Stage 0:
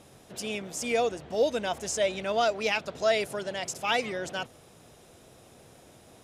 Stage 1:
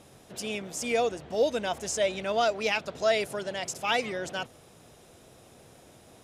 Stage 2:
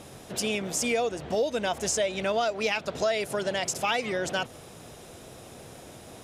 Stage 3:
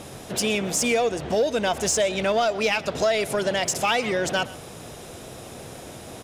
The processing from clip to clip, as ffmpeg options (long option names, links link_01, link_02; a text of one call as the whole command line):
ffmpeg -i in.wav -af anull out.wav
ffmpeg -i in.wav -af "acompressor=threshold=-33dB:ratio=4,volume=8dB" out.wav
ffmpeg -i in.wav -filter_complex "[0:a]asplit=2[link_01][link_02];[link_02]asoftclip=type=hard:threshold=-31dB,volume=-6.5dB[link_03];[link_01][link_03]amix=inputs=2:normalize=0,aecho=1:1:123:0.106,volume=3dB" out.wav